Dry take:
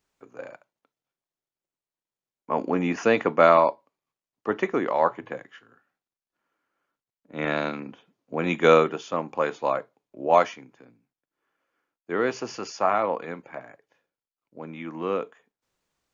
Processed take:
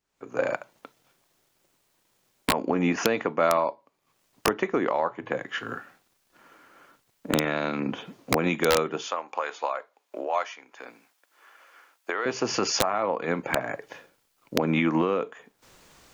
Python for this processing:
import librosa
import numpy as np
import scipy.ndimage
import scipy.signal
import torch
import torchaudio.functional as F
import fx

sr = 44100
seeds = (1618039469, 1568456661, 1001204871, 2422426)

y = fx.recorder_agc(x, sr, target_db=-9.0, rise_db_per_s=54.0, max_gain_db=30)
y = fx.highpass(y, sr, hz=720.0, slope=12, at=(9.07, 12.26))
y = (np.mod(10.0 ** (4.0 / 20.0) * y + 1.0, 2.0) - 1.0) / 10.0 ** (4.0 / 20.0)
y = y * 10.0 ** (-6.0 / 20.0)